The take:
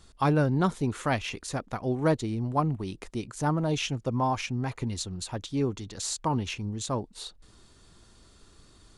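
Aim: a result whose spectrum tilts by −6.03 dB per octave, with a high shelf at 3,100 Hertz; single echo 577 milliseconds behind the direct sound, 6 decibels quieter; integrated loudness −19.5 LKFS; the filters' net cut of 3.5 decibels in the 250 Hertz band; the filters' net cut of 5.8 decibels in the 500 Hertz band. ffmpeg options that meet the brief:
ffmpeg -i in.wav -af "equalizer=frequency=250:width_type=o:gain=-3,equalizer=frequency=500:width_type=o:gain=-6.5,highshelf=frequency=3100:gain=-8,aecho=1:1:577:0.501,volume=12dB" out.wav

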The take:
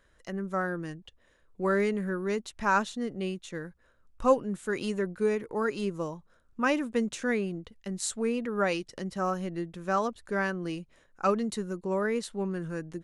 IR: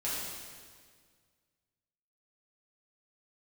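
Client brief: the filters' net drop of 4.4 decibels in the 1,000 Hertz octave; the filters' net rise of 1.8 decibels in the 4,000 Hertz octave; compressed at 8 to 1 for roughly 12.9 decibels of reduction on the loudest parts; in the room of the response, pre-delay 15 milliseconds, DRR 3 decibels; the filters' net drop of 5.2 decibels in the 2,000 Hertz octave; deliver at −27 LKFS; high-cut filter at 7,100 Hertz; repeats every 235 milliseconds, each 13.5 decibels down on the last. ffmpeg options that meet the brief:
-filter_complex "[0:a]lowpass=7100,equalizer=frequency=1000:width_type=o:gain=-4,equalizer=frequency=2000:width_type=o:gain=-6.5,equalizer=frequency=4000:width_type=o:gain=5,acompressor=threshold=-31dB:ratio=8,aecho=1:1:235|470:0.211|0.0444,asplit=2[link_01][link_02];[1:a]atrim=start_sample=2205,adelay=15[link_03];[link_02][link_03]afir=irnorm=-1:irlink=0,volume=-8.5dB[link_04];[link_01][link_04]amix=inputs=2:normalize=0,volume=8dB"

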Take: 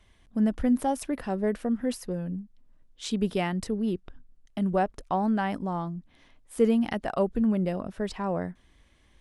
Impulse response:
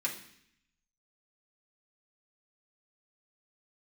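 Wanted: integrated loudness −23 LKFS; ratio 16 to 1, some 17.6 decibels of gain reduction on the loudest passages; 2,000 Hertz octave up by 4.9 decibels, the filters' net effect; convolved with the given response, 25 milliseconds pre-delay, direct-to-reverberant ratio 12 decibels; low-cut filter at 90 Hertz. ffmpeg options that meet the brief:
-filter_complex "[0:a]highpass=90,equalizer=frequency=2000:width_type=o:gain=6,acompressor=threshold=-36dB:ratio=16,asplit=2[link_01][link_02];[1:a]atrim=start_sample=2205,adelay=25[link_03];[link_02][link_03]afir=irnorm=-1:irlink=0,volume=-16dB[link_04];[link_01][link_04]amix=inputs=2:normalize=0,volume=18dB"

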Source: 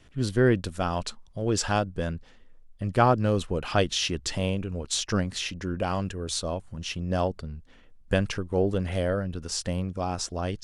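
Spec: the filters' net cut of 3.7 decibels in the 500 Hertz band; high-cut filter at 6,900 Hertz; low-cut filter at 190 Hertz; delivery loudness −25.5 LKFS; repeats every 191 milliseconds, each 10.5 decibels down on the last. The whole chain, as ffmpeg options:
ffmpeg -i in.wav -af "highpass=190,lowpass=6900,equalizer=frequency=500:width_type=o:gain=-4.5,aecho=1:1:191|382|573:0.299|0.0896|0.0269,volume=5dB" out.wav

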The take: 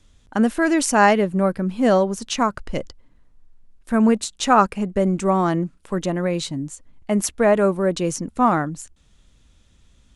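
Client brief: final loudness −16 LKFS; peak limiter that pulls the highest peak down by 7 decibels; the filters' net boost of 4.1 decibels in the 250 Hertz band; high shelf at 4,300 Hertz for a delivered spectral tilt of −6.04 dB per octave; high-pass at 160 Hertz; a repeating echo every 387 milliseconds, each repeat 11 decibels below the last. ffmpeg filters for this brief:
ffmpeg -i in.wav -af "highpass=160,equalizer=frequency=250:width_type=o:gain=6.5,highshelf=frequency=4300:gain=-4,alimiter=limit=-8dB:level=0:latency=1,aecho=1:1:387|774|1161:0.282|0.0789|0.0221,volume=3.5dB" out.wav

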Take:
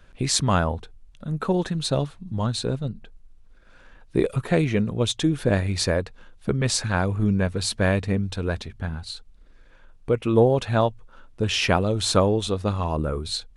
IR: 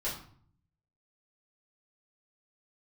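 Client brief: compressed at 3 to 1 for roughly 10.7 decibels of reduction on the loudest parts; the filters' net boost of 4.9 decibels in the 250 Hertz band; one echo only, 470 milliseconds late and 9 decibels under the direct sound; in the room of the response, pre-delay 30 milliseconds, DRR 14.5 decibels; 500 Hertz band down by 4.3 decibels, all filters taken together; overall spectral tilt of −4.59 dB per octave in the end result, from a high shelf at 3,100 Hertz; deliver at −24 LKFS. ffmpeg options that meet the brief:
-filter_complex "[0:a]equalizer=frequency=250:width_type=o:gain=9,equalizer=frequency=500:width_type=o:gain=-8.5,highshelf=frequency=3100:gain=5,acompressor=threshold=-28dB:ratio=3,aecho=1:1:470:0.355,asplit=2[link_01][link_02];[1:a]atrim=start_sample=2205,adelay=30[link_03];[link_02][link_03]afir=irnorm=-1:irlink=0,volume=-19dB[link_04];[link_01][link_04]amix=inputs=2:normalize=0,volume=6dB"

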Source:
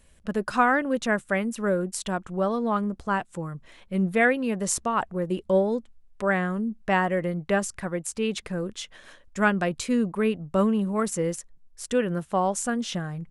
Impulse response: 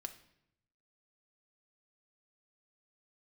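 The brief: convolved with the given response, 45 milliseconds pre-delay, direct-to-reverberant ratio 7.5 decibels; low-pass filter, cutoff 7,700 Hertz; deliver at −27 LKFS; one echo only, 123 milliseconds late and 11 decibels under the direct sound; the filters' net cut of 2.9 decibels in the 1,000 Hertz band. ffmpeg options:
-filter_complex "[0:a]lowpass=7700,equalizer=frequency=1000:width_type=o:gain=-4,aecho=1:1:123:0.282,asplit=2[link_01][link_02];[1:a]atrim=start_sample=2205,adelay=45[link_03];[link_02][link_03]afir=irnorm=-1:irlink=0,volume=-4dB[link_04];[link_01][link_04]amix=inputs=2:normalize=0,volume=-1dB"

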